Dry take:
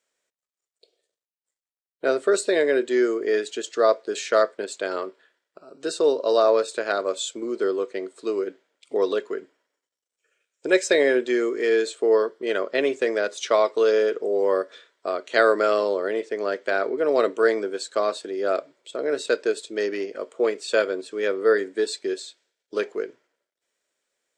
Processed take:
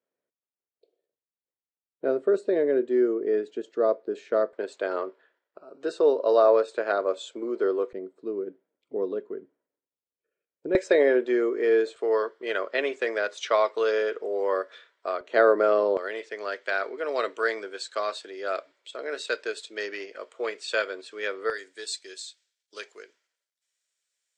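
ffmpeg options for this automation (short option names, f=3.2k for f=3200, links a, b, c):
-af "asetnsamples=n=441:p=0,asendcmd='4.53 bandpass f 670;7.93 bandpass f 120;10.75 bandpass f 620;11.96 bandpass f 1500;15.21 bandpass f 550;15.97 bandpass f 2400;21.5 bandpass f 6600',bandpass=f=210:t=q:w=0.53:csg=0"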